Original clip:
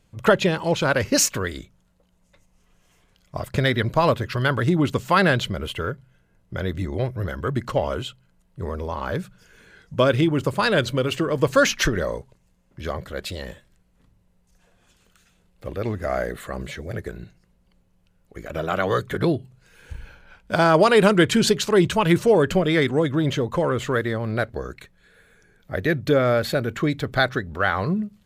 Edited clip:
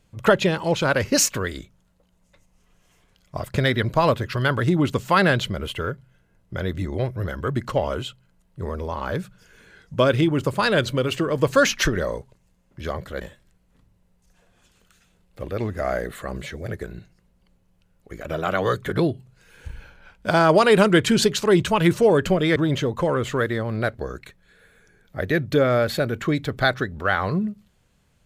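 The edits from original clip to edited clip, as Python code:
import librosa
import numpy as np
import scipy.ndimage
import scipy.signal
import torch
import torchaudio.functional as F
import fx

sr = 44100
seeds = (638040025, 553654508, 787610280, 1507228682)

y = fx.edit(x, sr, fx.cut(start_s=13.21, length_s=0.25),
    fx.cut(start_s=22.81, length_s=0.3), tone=tone)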